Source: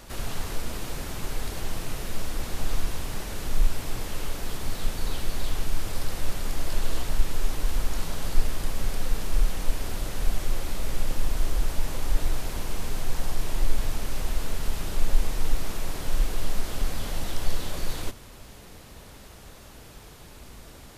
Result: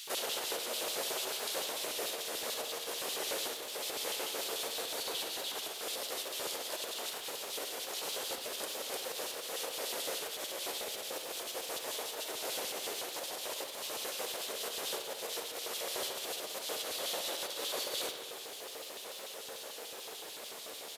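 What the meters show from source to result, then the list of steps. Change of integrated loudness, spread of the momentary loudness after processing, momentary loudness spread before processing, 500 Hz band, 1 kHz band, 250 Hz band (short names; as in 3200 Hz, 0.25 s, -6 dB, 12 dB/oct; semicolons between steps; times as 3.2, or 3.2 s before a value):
-4.0 dB, 8 LU, 16 LU, 0.0 dB, -3.0 dB, -12.5 dB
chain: high shelf 5000 Hz +5 dB; in parallel at +0.5 dB: compressor, threshold -31 dBFS, peak gain reduction 19.5 dB; on the sum: bell 87 Hz -3.5 dB 2.9 oct; doubler 13 ms -11 dB; limiter -15 dBFS, peak gain reduction 10 dB; crackle 310/s -36 dBFS; LFO high-pass square 6.8 Hz 480–3300 Hz; HPF 56 Hz; analogue delay 67 ms, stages 2048, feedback 73%, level -9 dB; gain -5.5 dB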